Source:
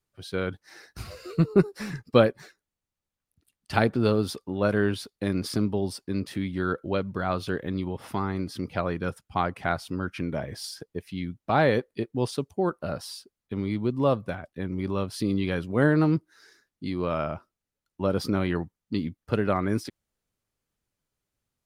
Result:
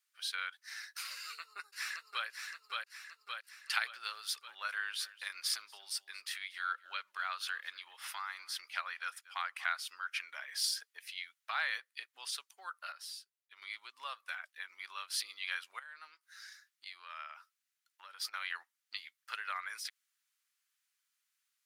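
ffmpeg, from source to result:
ffmpeg -i in.wav -filter_complex "[0:a]asplit=2[link_01][link_02];[link_02]afade=type=in:start_time=1.15:duration=0.01,afade=type=out:start_time=2.26:duration=0.01,aecho=0:1:570|1140|1710|2280|2850|3420:0.630957|0.283931|0.127769|0.057496|0.0258732|0.0116429[link_03];[link_01][link_03]amix=inputs=2:normalize=0,asplit=3[link_04][link_05][link_06];[link_04]afade=type=out:start_time=4.98:duration=0.02[link_07];[link_05]aecho=1:1:235:0.075,afade=type=in:start_time=4.98:duration=0.02,afade=type=out:start_time=9.77:duration=0.02[link_08];[link_06]afade=type=in:start_time=9.77:duration=0.02[link_09];[link_07][link_08][link_09]amix=inputs=3:normalize=0,asettb=1/sr,asplit=3[link_10][link_11][link_12];[link_10]atrim=end=15.794[link_13];[link_11]atrim=start=15.79:end=18.34,asetpts=PTS-STARTPTS,afade=type=in:duration=0.004:curve=qsin,afade=type=out:start_time=2.546:duration=0.004:curve=qsin,acompressor=threshold=-34dB:ratio=16:attack=3.2:release=140:knee=1:detection=peak[link_14];[link_12]atrim=start=18.336[link_15];[link_13][link_14]acrossfade=duration=0.004:curve1=hsin:curve2=qsin[link_16];[link_16][link_15]acrossfade=duration=0.004:curve1=qsin:curve2=hsin,asplit=3[link_17][link_18][link_19];[link_17]atrim=end=12.922[link_20];[link_18]atrim=start=12.918:end=13.622,asetpts=PTS-STARTPTS,volume=-10.5dB[link_21];[link_19]atrim=start=13.618[link_22];[link_20][link_21]acrossfade=duration=0.004:curve1=hsin:curve2=hsin[link_23];[link_23][link_22]acrossfade=duration=0.004:curve1=hsin:curve2=hsin,acompressor=threshold=-32dB:ratio=2,highpass=frequency=1400:width=0.5412,highpass=frequency=1400:width=1.3066,volume=4.5dB" out.wav

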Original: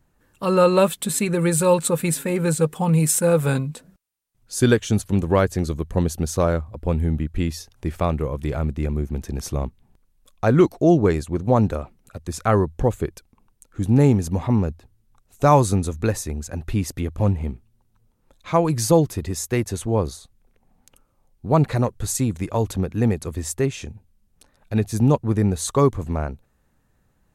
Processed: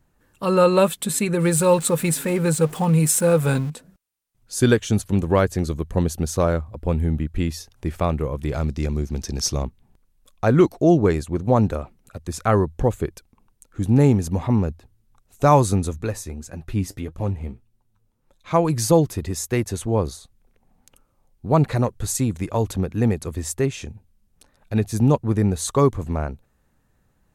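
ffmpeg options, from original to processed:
ffmpeg -i in.wav -filter_complex "[0:a]asettb=1/sr,asplit=3[link_01][link_02][link_03];[link_01]atrim=end=1.404[link_04];[link_02]atrim=start=1.4:end=3.7,asetpts=PTS-STARTPTS,afade=type=in:duration=0.004:curve=qsin,afade=type=out:start_time=2.296:duration=0.004:curve=qsin,aeval=exprs='val(0)+0.5*0.02*sgn(val(0))':channel_layout=same[link_05];[link_03]atrim=start=3.696[link_06];[link_04][link_05]acrossfade=duration=0.004:curve1=hsin:curve2=qsin[link_07];[link_07][link_06]acrossfade=duration=0.004:curve1=qsin:curve2=hsin,asettb=1/sr,asplit=3[link_08][link_09][link_10];[link_08]atrim=end=8.544[link_11];[link_09]atrim=start=8.54:end=9.63,asetpts=PTS-STARTPTS,afade=type=in:duration=0.004:curve=qsin,afade=type=out:start_time=1.086:duration=0.004:curve=qsin,equalizer=frequency=5300:width_type=o:width=0.93:gain=14.5[link_12];[link_10]atrim=start=9.626[link_13];[link_11][link_12]acrossfade=duration=0.004:curve1=hsin:curve2=qsin[link_14];[link_14][link_13]acrossfade=duration=0.004:curve1=qsin:curve2=hsin,asettb=1/sr,asplit=3[link_15][link_16][link_17];[link_15]atrim=end=15.984[link_18];[link_16]atrim=start=15.98:end=18.51,asetpts=PTS-STARTPTS,afade=type=in:duration=0.004:curve=qsin,afade=type=out:start_time=2.526:duration=0.004:curve=qsin,flanger=delay=5.1:depth=6.3:regen=53:speed=1.7:shape=triangular[link_19];[link_17]atrim=start=18.506[link_20];[link_18][link_19]acrossfade=duration=0.004:curve1=hsin:curve2=qsin[link_21];[link_21][link_20]acrossfade=duration=0.004:curve1=qsin:curve2=hsin" out.wav

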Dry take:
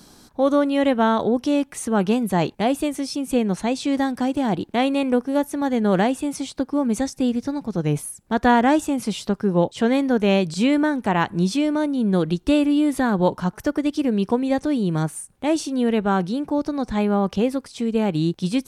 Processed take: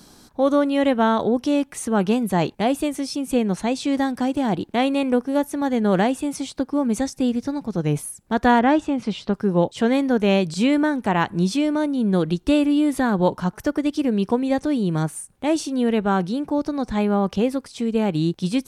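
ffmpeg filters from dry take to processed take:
ffmpeg -i in.wav -filter_complex "[0:a]asettb=1/sr,asplit=3[link_01][link_02][link_03];[link_01]atrim=end=8.594[link_04];[link_02]atrim=start=8.59:end=9.33,asetpts=PTS-STARTPTS,afade=type=in:duration=0.004:curve=qsin,afade=type=out:start_time=0.736:duration=0.004:curve=qsin,lowpass=3900[link_05];[link_03]atrim=start=9.326[link_06];[link_04][link_05]acrossfade=duration=0.004:curve1=hsin:curve2=qsin[link_07];[link_07][link_06]acrossfade=duration=0.004:curve1=qsin:curve2=hsin" out.wav

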